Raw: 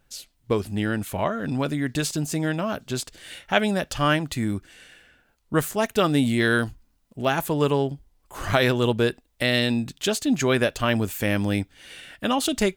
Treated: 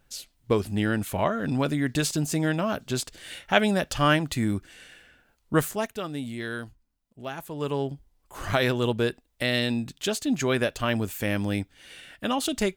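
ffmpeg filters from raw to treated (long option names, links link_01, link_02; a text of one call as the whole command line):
ffmpeg -i in.wav -af "volume=9dB,afade=type=out:start_time=5.56:duration=0.43:silence=0.237137,afade=type=in:start_time=7.51:duration=0.4:silence=0.354813" out.wav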